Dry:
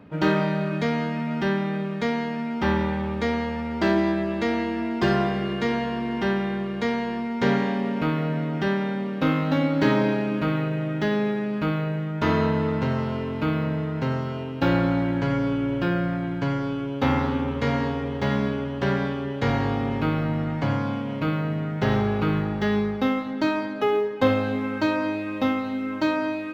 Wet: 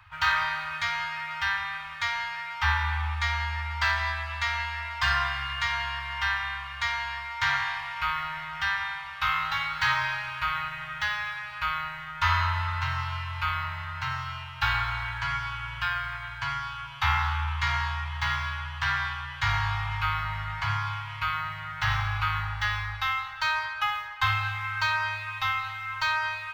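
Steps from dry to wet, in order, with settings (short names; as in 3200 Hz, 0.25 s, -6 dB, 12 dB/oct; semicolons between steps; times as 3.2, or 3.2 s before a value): inverse Chebyshev band-stop 180–520 Hz, stop band 50 dB; on a send: reverb RT60 1.5 s, pre-delay 5 ms, DRR 13 dB; on the sum: gain +4.5 dB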